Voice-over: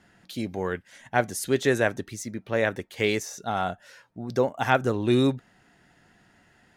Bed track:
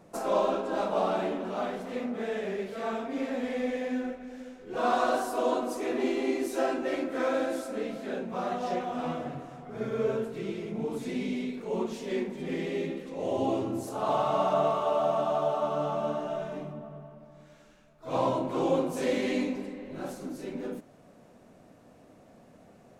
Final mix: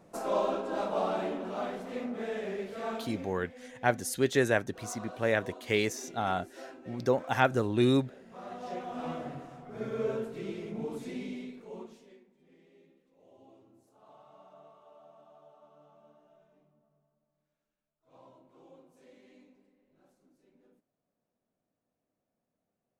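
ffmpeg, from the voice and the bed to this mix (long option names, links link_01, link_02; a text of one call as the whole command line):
ffmpeg -i stem1.wav -i stem2.wav -filter_complex "[0:a]adelay=2700,volume=-3.5dB[link_01];[1:a]volume=12.5dB,afade=type=out:start_time=2.9:duration=0.44:silence=0.158489,afade=type=in:start_time=8.22:duration=0.94:silence=0.16788,afade=type=out:start_time=10.78:duration=1.41:silence=0.0473151[link_02];[link_01][link_02]amix=inputs=2:normalize=0" out.wav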